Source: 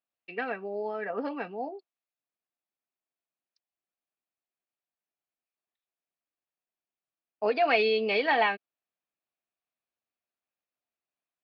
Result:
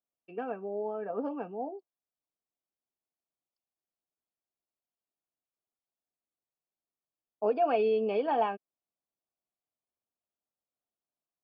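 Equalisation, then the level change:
moving average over 22 samples
0.0 dB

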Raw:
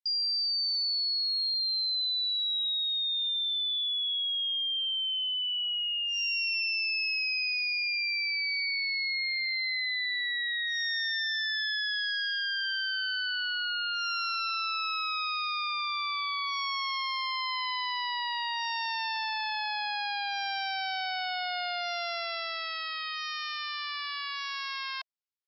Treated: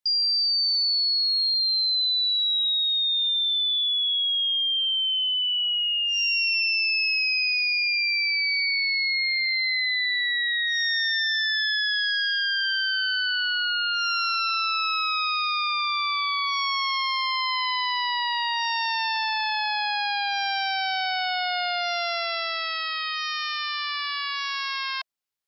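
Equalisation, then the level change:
mains-hum notches 50/100/150/200/250/300/350/400/450 Hz
+6.5 dB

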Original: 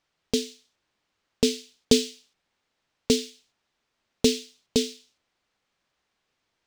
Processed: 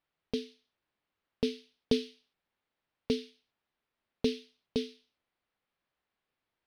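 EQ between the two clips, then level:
moving average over 6 samples
−8.0 dB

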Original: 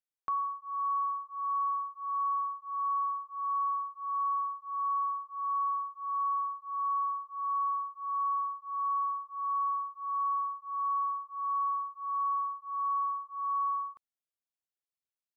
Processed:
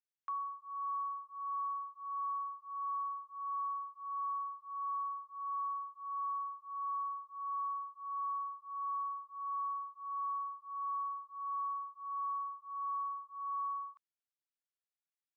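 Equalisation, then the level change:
high-pass filter 960 Hz 24 dB per octave
high-frequency loss of the air 53 metres
−5.5 dB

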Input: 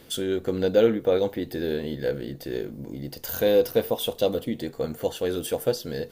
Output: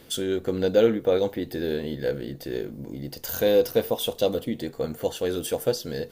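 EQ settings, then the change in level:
dynamic equaliser 6,300 Hz, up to +3 dB, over −46 dBFS, Q 1.3
0.0 dB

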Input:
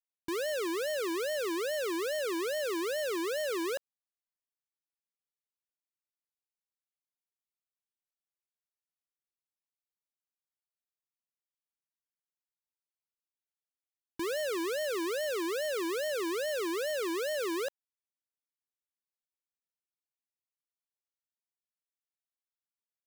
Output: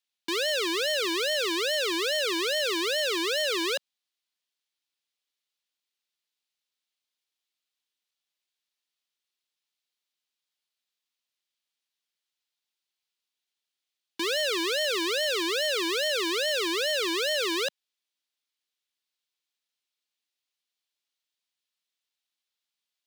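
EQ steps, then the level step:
high-pass filter 190 Hz 24 dB per octave
parametric band 3,600 Hz +14 dB 1.7 octaves
+2.0 dB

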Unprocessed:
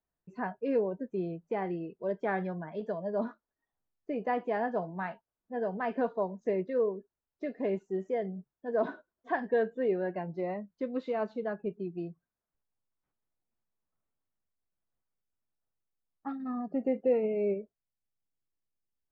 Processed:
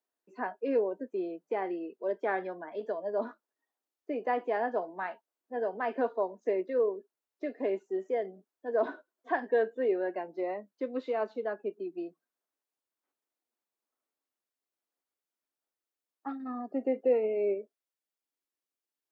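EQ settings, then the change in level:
Butterworth high-pass 260 Hz 36 dB per octave
+1.0 dB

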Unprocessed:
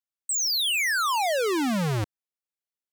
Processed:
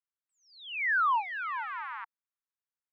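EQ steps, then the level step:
Butterworth high-pass 880 Hz 96 dB per octave
inverse Chebyshev low-pass filter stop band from 9,700 Hz, stop band 80 dB
0.0 dB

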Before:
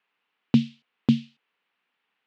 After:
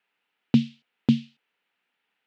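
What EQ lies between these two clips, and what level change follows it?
notch filter 1,100 Hz, Q 6.6
0.0 dB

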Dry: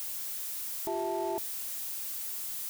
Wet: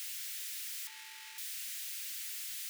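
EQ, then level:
inverse Chebyshev high-pass filter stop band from 690 Hz, stop band 50 dB
low-pass filter 2,600 Hz 6 dB per octave
+7.5 dB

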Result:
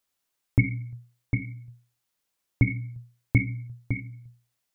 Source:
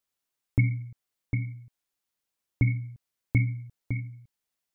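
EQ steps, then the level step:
mains-hum notches 60/120/180/240/300/360/420/480 Hz
+5.0 dB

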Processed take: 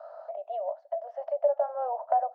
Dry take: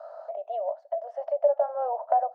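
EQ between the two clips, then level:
high-frequency loss of the air 100 metres
low-shelf EQ 360 Hz −8 dB
notch filter 440 Hz, Q 12
0.0 dB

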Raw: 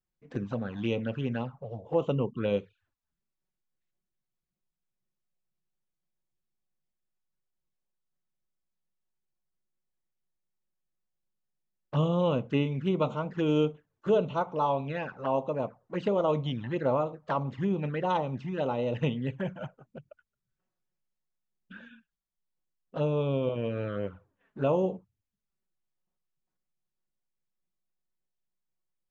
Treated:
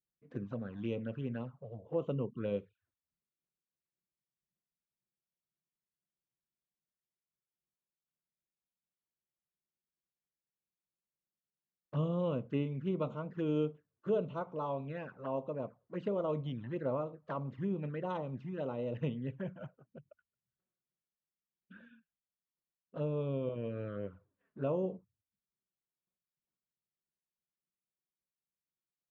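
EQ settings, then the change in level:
high-pass filter 60 Hz
parametric band 820 Hz −7.5 dB 0.36 octaves
high-shelf EQ 2,600 Hz −12 dB
−6.5 dB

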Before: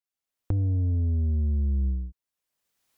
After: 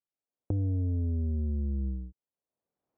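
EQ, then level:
high-pass filter 130 Hz 6 dB per octave
Chebyshev low-pass filter 600 Hz, order 2
+1.0 dB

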